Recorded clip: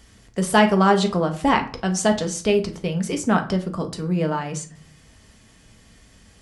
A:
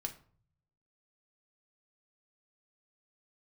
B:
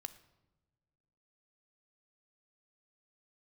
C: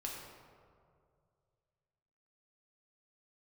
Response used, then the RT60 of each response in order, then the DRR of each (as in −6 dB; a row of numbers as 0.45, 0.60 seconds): A; 0.50 s, non-exponential decay, 2.2 s; 4.5, 11.5, −3.0 decibels